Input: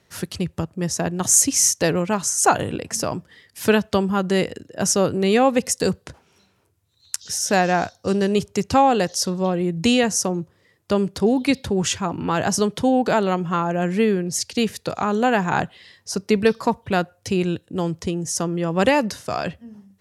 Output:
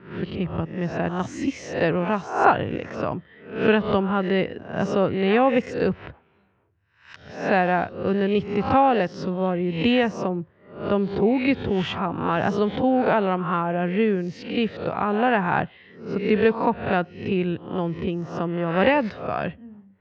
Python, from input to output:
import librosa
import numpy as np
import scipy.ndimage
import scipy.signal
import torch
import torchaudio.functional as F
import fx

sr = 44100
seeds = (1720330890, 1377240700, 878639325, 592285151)

y = fx.spec_swells(x, sr, rise_s=0.51)
y = fx.env_lowpass(y, sr, base_hz=2100.0, full_db=-13.5)
y = scipy.signal.sosfilt(scipy.signal.butter(4, 3000.0, 'lowpass', fs=sr, output='sos'), y)
y = F.gain(torch.from_numpy(y), -2.5).numpy()